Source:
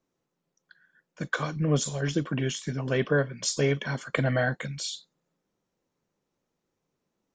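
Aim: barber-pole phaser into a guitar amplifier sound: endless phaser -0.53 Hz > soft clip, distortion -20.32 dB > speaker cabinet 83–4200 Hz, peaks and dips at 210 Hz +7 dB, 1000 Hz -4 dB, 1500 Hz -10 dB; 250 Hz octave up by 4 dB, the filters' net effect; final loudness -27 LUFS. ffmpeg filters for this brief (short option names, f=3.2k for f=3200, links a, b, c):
-filter_complex "[0:a]equalizer=f=250:t=o:g=3.5,asplit=2[a][b];[b]afreqshift=-0.53[c];[a][c]amix=inputs=2:normalize=1,asoftclip=threshold=-17.5dB,highpass=83,equalizer=f=210:t=q:w=4:g=7,equalizer=f=1k:t=q:w=4:g=-4,equalizer=f=1.5k:t=q:w=4:g=-10,lowpass=f=4.2k:w=0.5412,lowpass=f=4.2k:w=1.3066,volume=4.5dB"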